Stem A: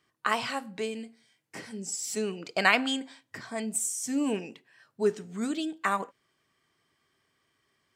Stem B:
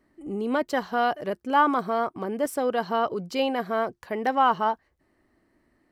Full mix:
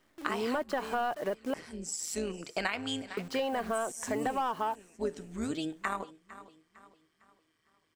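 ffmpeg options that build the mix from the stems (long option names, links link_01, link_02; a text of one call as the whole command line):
ffmpeg -i stem1.wav -i stem2.wav -filter_complex "[0:a]tremolo=f=160:d=0.621,volume=0dB,asplit=2[link_01][link_02];[link_02]volume=-19.5dB[link_03];[1:a]asplit=2[link_04][link_05];[link_05]highpass=frequency=720:poles=1,volume=16dB,asoftclip=type=tanh:threshold=-9dB[link_06];[link_04][link_06]amix=inputs=2:normalize=0,lowpass=frequency=1600:poles=1,volume=-6dB,acrusher=bits=8:dc=4:mix=0:aa=0.000001,volume=-5dB,asplit=3[link_07][link_08][link_09];[link_07]atrim=end=1.54,asetpts=PTS-STARTPTS,afade=type=out:start_time=1.536:duration=0.004:curve=hsin[link_10];[link_08]atrim=start=1.54:end=3.17,asetpts=PTS-STARTPTS,volume=0[link_11];[link_09]atrim=start=3.17,asetpts=PTS-STARTPTS,afade=type=in:duration=0.004:curve=hsin[link_12];[link_10][link_11][link_12]concat=n=3:v=0:a=1,asplit=2[link_13][link_14];[link_14]apad=whole_len=350855[link_15];[link_01][link_15]sidechaincompress=threshold=-28dB:ratio=8:attack=44:release=754[link_16];[link_03]aecho=0:1:454|908|1362|1816|2270|2724:1|0.41|0.168|0.0689|0.0283|0.0116[link_17];[link_16][link_13][link_17]amix=inputs=3:normalize=0,acompressor=threshold=-28dB:ratio=10" out.wav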